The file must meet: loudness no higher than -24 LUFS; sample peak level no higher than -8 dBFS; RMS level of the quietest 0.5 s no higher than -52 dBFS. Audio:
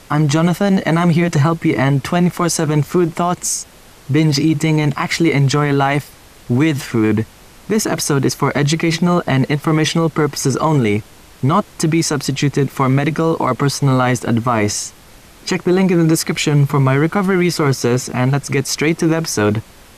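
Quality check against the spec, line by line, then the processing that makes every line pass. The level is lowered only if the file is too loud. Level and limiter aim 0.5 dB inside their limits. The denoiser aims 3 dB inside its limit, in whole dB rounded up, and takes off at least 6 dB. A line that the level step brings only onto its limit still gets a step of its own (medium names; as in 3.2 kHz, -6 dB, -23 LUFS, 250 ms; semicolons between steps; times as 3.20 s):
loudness -16.0 LUFS: fail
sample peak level -5.5 dBFS: fail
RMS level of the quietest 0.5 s -42 dBFS: fail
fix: noise reduction 6 dB, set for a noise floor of -42 dBFS; trim -8.5 dB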